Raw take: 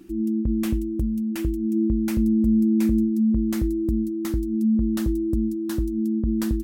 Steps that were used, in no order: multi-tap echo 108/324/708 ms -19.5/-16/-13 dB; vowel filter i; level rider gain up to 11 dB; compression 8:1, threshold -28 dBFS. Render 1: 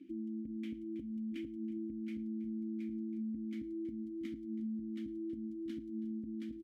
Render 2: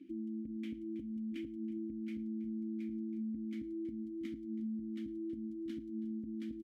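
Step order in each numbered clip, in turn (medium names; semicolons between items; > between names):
level rider > multi-tap echo > compression > vowel filter; multi-tap echo > level rider > compression > vowel filter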